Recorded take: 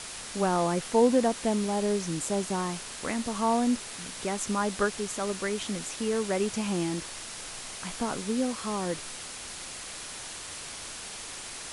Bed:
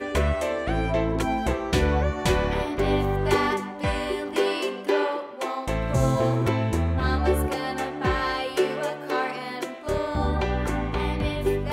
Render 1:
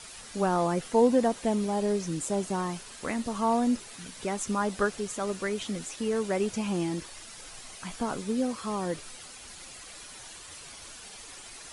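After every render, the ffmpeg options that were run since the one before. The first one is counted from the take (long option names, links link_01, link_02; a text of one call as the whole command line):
ffmpeg -i in.wav -af "afftdn=noise_reduction=9:noise_floor=-41" out.wav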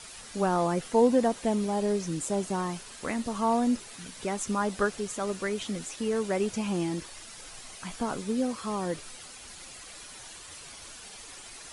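ffmpeg -i in.wav -af anull out.wav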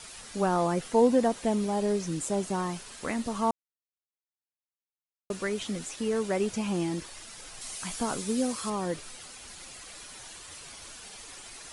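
ffmpeg -i in.wav -filter_complex "[0:a]asettb=1/sr,asplit=3[link_01][link_02][link_03];[link_01]atrim=end=7.614[link_04];[link_02]atrim=start=7.61:end=8.7,asetpts=PTS-STARTPTS,afade=type=in:duration=0.004:curve=qsin,afade=type=out:start_time=1.086:duration=0.004:curve=qsin,highshelf=frequency=4400:gain=10[link_05];[link_03]atrim=start=8.696[link_06];[link_04][link_05]acrossfade=duration=0.004:curve1=hsin:curve2=qsin[link_07];[link_07][link_06]acrossfade=duration=0.004:curve1=qsin:curve2=hsin,asplit=3[link_08][link_09][link_10];[link_08]atrim=end=3.51,asetpts=PTS-STARTPTS,afade=type=out:start_time=3.506:duration=0.004:curve=hsin[link_11];[link_09]atrim=start=3.51:end=5.3,asetpts=PTS-STARTPTS,volume=0[link_12];[link_10]atrim=start=5.3,asetpts=PTS-STARTPTS,afade=type=in:duration=0.004:curve=hsin[link_13];[link_11][link_12][link_13]concat=n=3:v=0:a=1" out.wav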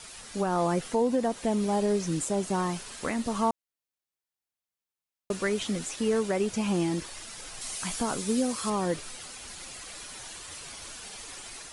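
ffmpeg -i in.wav -af "alimiter=limit=-20dB:level=0:latency=1:release=285,dynaudnorm=framelen=290:gausssize=3:maxgain=3dB" out.wav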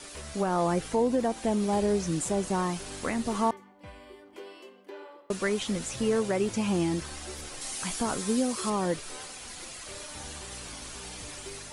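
ffmpeg -i in.wav -i bed.wav -filter_complex "[1:a]volume=-21.5dB[link_01];[0:a][link_01]amix=inputs=2:normalize=0" out.wav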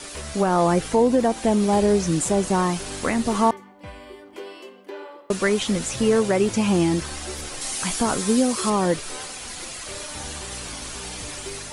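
ffmpeg -i in.wav -af "volume=7.5dB" out.wav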